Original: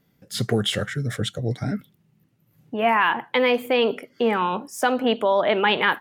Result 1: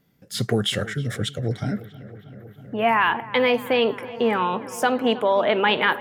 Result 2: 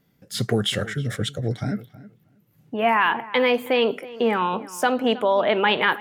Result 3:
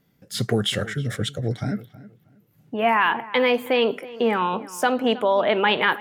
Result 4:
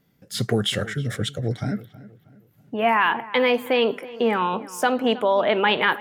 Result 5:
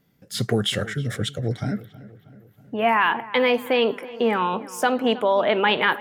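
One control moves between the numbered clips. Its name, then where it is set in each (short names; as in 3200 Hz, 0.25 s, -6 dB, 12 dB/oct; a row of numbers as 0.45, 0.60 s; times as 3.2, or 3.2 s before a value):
darkening echo, feedback: 86, 15, 24, 40, 58%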